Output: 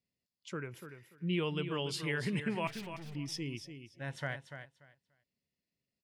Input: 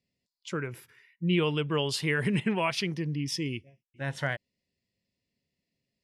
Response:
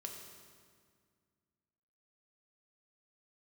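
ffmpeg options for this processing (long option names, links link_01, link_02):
-filter_complex "[0:a]asettb=1/sr,asplit=3[link_01][link_02][link_03];[link_01]atrim=end=2.674[link_04];[link_02]atrim=start=2.67:end=3.15,asetpts=PTS-STARTPTS,afade=type=in:duration=0.004:curve=qsin,afade=type=out:start_time=0.476:duration=0.004:curve=qsin,aeval=exprs='(tanh(79.4*val(0)+0.55)-tanh(0.55))/79.4':channel_layout=same[link_05];[link_03]atrim=start=3.146[link_06];[link_04][link_05]acrossfade=duration=0.004:curve1=hsin:curve2=qsin[link_07];[link_07][link_06]acrossfade=duration=0.004:curve1=qsin:curve2=hsin,asplit=2[link_08][link_09];[link_09]aecho=0:1:291|582|873:0.335|0.0636|0.0121[link_10];[link_08][link_10]amix=inputs=2:normalize=0,volume=-7.5dB"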